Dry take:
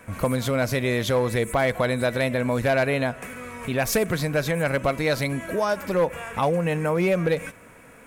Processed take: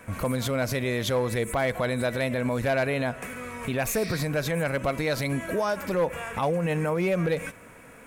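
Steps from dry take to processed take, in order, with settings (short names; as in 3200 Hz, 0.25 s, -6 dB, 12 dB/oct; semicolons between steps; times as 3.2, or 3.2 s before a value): limiter -18 dBFS, peak gain reduction 6.5 dB; spectral repair 3.89–4.19, 1800–6100 Hz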